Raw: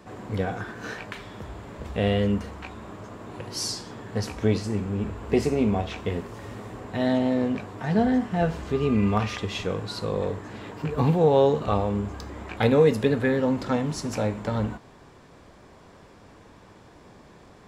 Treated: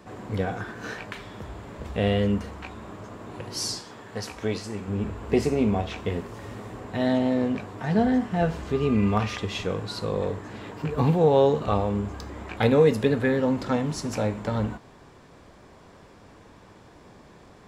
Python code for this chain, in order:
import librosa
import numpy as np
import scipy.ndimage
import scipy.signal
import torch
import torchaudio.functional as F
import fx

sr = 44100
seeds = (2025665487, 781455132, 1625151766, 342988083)

y = fx.low_shelf(x, sr, hz=350.0, db=-9.5, at=(3.79, 4.88))